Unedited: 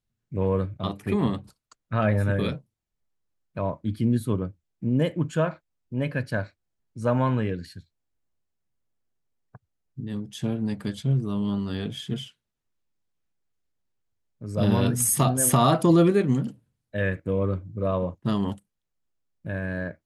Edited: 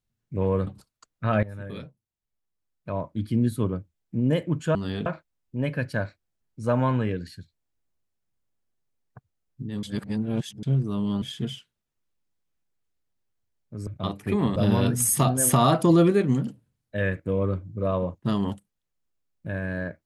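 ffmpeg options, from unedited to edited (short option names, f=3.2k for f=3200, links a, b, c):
-filter_complex "[0:a]asplit=10[a][b][c][d][e][f][g][h][i][j];[a]atrim=end=0.672[k];[b]atrim=start=1.358:end=2.12,asetpts=PTS-STARTPTS,afade=t=out:st=0.758:d=0.004:c=hsin:silence=0.141254[l];[c]atrim=start=2.12:end=5.442,asetpts=PTS-STARTPTS,afade=t=in:d=1.99:silence=0.141254[m];[d]atrim=start=11.598:end=11.912[n];[e]atrim=start=5.438:end=10.212[o];[f]atrim=start=10.208:end=11.012,asetpts=PTS-STARTPTS,areverse[p];[g]atrim=start=11.008:end=11.602[q];[h]atrim=start=11.908:end=14.562[r];[i]atrim=start=0.668:end=1.362[s];[j]atrim=start=14.558[t];[l][m]concat=n=2:v=0:a=1[u];[k][u]acrossfade=d=0.004:c1=hsin:c2=hsin[v];[v][n]acrossfade=d=0.004:c1=hsin:c2=hsin[w];[w][o]acrossfade=d=0.004:c1=hsin:c2=hsin[x];[x][p]acrossfade=d=0.004:c1=hsin:c2=hsin[y];[y][q]acrossfade=d=0.004:c1=hsin:c2=hsin[z];[z][r]acrossfade=d=0.004:c1=hsin:c2=hsin[aa];[aa][s]acrossfade=d=0.004:c1=hsin:c2=hsin[ab];[ab][t]acrossfade=d=0.004:c1=hsin:c2=hsin"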